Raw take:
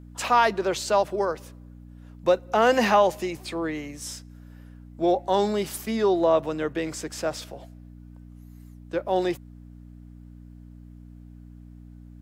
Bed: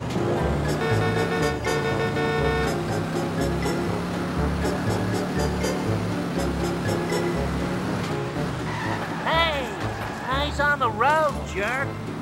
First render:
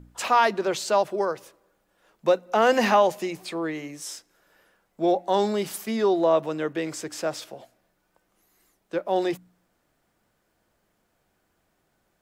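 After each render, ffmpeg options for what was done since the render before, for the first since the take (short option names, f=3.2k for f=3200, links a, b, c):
-af "bandreject=f=60:t=h:w=4,bandreject=f=120:t=h:w=4,bandreject=f=180:t=h:w=4,bandreject=f=240:t=h:w=4,bandreject=f=300:t=h:w=4"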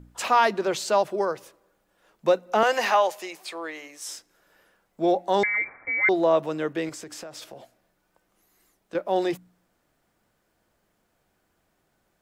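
-filter_complex "[0:a]asettb=1/sr,asplit=3[a][b][c];[a]atrim=end=2.634[d];[b]atrim=start=2.63:end=4.09,asetpts=PTS-STARTPTS,afade=t=in:d=0.004:c=qsin,afade=t=out:st=1.456:d=0.004:c=qsin,highpass=590[e];[c]atrim=start=4.086[f];[d][e]acrossfade=d=0.004:c1=hsin:c2=qsin[g];[g][f]acrossfade=d=0.004:c1=qsin:c2=hsin,asettb=1/sr,asplit=3[h][i][j];[h]atrim=end=5.434[k];[i]atrim=start=5.43:end=6.09,asetpts=PTS-STARTPTS,afade=t=in:d=0.004:c=qsin,afade=t=out:st=0.656:d=0.004:c=qsin,lowpass=f=2.1k:t=q:w=0.5098,lowpass=f=2.1k:t=q:w=0.6013,lowpass=f=2.1k:t=q:w=0.9,lowpass=f=2.1k:t=q:w=2.563,afreqshift=-2500[l];[j]atrim=start=6.086[m];[k][l]acrossfade=d=0.004:c1=hsin:c2=qsin[n];[n][m]acrossfade=d=0.004:c1=qsin:c2=hsin,asettb=1/sr,asplit=3[o][p][q];[o]atrim=end=6.894[r];[p]atrim=start=6.89:end=8.95,asetpts=PTS-STARTPTS,afade=t=in:d=0.004:c=qsin,afade=t=out:st=2.056:d=0.004:c=qsin,acompressor=threshold=-35dB:ratio=16:attack=3.2:release=140:knee=1:detection=peak[s];[q]atrim=start=8.946[t];[r][s]acrossfade=d=0.004:c1=hsin:c2=qsin[u];[u][t]acrossfade=d=0.004:c1=qsin:c2=hsin"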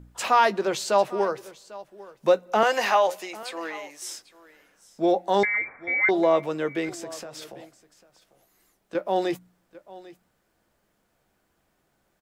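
-filter_complex "[0:a]asplit=2[a][b];[b]adelay=15,volume=-13dB[c];[a][c]amix=inputs=2:normalize=0,aecho=1:1:797:0.106"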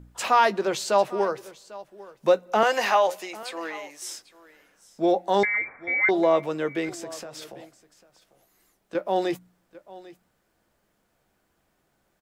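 -af anull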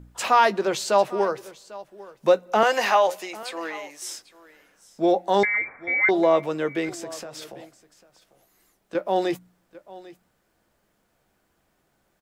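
-af "volume=1.5dB"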